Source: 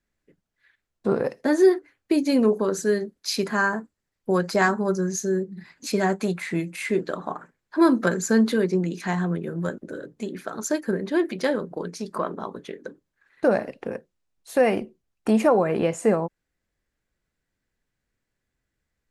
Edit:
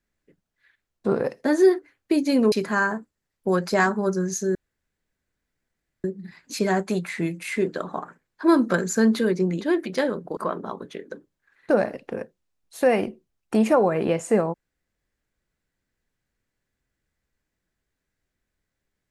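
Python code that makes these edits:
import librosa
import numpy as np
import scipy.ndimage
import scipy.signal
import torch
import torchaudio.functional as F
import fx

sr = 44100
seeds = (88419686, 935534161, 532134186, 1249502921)

y = fx.edit(x, sr, fx.cut(start_s=2.52, length_s=0.82),
    fx.insert_room_tone(at_s=5.37, length_s=1.49),
    fx.cut(start_s=8.94, length_s=2.13),
    fx.cut(start_s=11.83, length_s=0.28), tone=tone)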